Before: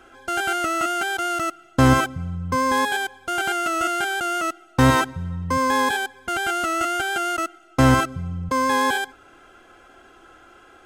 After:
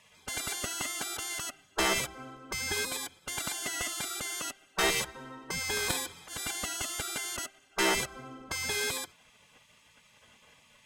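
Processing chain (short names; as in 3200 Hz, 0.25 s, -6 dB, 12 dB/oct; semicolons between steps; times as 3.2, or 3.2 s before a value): 5.77–6.47 transient shaper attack -11 dB, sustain +10 dB; spectral gate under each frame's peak -15 dB weak; added harmonics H 4 -18 dB, 6 -29 dB, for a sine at -13.5 dBFS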